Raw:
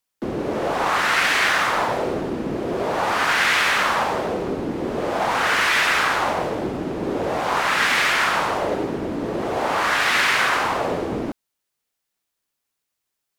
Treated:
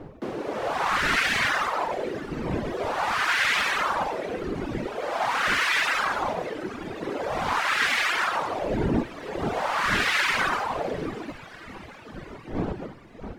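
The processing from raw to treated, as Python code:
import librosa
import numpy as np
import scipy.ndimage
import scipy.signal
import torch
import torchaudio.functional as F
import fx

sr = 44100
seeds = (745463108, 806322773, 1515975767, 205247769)

p1 = fx.dmg_wind(x, sr, seeds[0], corner_hz=280.0, level_db=-27.0)
p2 = fx.high_shelf(p1, sr, hz=8400.0, db=-5.0)
p3 = p2 + fx.echo_diffused(p2, sr, ms=602, feedback_pct=57, wet_db=-14.0, dry=0)
p4 = fx.dereverb_blind(p3, sr, rt60_s=2.0)
p5 = fx.low_shelf(p4, sr, hz=260.0, db=-9.0)
y = F.gain(torch.from_numpy(p5), -1.5).numpy()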